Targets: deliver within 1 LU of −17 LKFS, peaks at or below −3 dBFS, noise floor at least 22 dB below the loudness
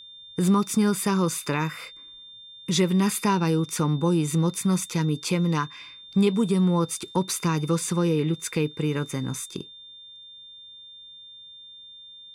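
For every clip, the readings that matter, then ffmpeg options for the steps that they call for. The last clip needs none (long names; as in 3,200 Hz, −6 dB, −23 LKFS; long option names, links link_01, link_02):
interfering tone 3,600 Hz; level of the tone −43 dBFS; integrated loudness −24.5 LKFS; sample peak −11.5 dBFS; target loudness −17.0 LKFS
→ -af "bandreject=frequency=3600:width=30"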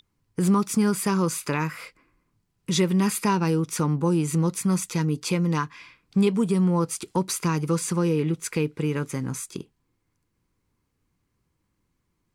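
interfering tone none found; integrated loudness −24.5 LKFS; sample peak −11.5 dBFS; target loudness −17.0 LKFS
→ -af "volume=7.5dB"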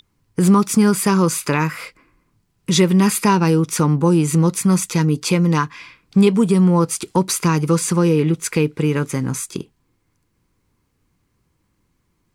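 integrated loudness −17.0 LKFS; sample peak −4.0 dBFS; background noise floor −68 dBFS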